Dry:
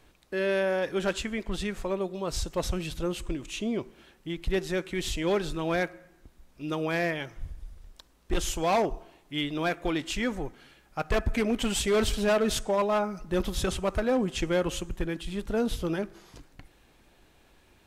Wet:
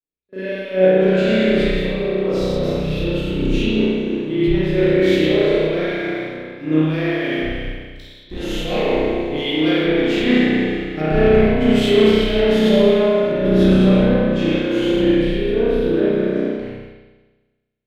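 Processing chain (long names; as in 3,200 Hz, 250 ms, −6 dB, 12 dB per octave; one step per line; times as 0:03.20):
peak hold with a decay on every bin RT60 1.69 s
noise gate −50 dBFS, range −9 dB
octave-band graphic EQ 125/250/500/1,000/2,000/4,000/8,000 Hz +6/+11/+9/−10/+6/+6/−5 dB
leveller curve on the samples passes 1
downward compressor 4 to 1, threshold −22 dBFS, peak gain reduction 12 dB
on a send: backwards echo 39 ms −15 dB
on the sum: spring reverb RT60 2.4 s, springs 32 ms, chirp 35 ms, DRR −8.5 dB
dynamic equaliser 7,700 Hz, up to −4 dB, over −39 dBFS, Q 1.1
multiband upward and downward expander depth 100%
level −2 dB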